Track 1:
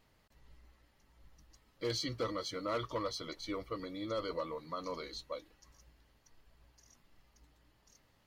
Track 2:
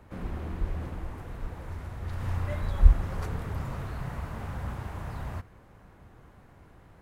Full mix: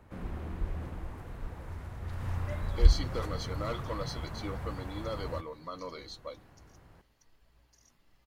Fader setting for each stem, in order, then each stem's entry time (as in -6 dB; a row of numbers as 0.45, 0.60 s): -0.5, -3.5 dB; 0.95, 0.00 s